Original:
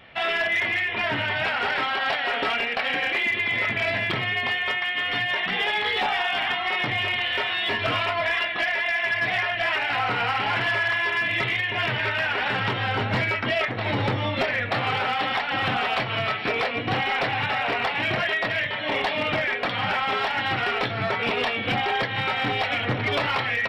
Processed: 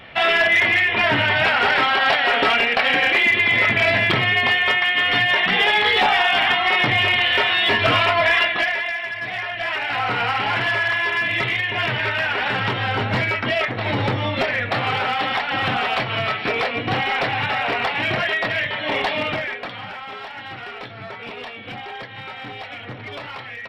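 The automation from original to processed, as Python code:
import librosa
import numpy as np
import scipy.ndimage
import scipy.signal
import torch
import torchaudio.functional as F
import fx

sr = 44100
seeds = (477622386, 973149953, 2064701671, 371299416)

y = fx.gain(x, sr, db=fx.line((8.45, 7.5), (9.13, -4.5), (10.15, 3.0), (19.17, 3.0), (19.92, -9.0)))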